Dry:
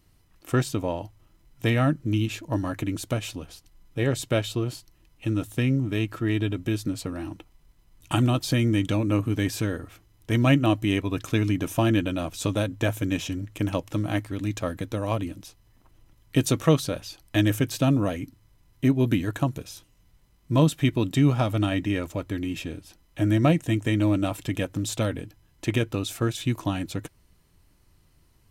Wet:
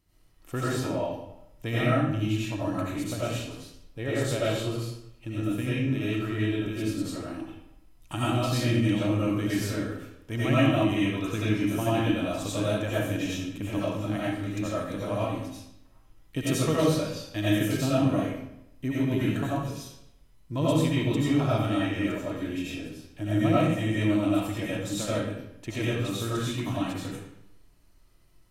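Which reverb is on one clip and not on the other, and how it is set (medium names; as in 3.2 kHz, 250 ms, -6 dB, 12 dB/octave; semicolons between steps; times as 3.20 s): algorithmic reverb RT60 0.8 s, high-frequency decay 0.85×, pre-delay 50 ms, DRR -8.5 dB; trim -10 dB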